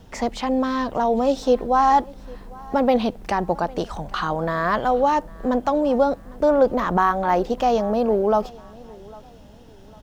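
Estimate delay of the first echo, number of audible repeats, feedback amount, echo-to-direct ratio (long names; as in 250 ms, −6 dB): 802 ms, 2, 37%, −22.5 dB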